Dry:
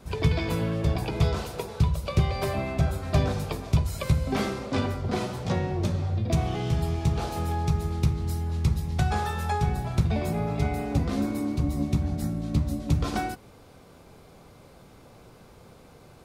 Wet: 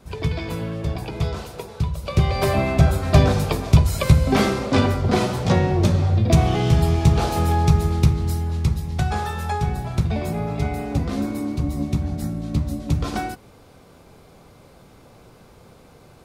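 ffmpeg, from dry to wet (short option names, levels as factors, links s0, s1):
-af "volume=2.82,afade=t=in:st=1.95:d=0.6:silence=0.334965,afade=t=out:st=7.72:d=1.07:silence=0.473151"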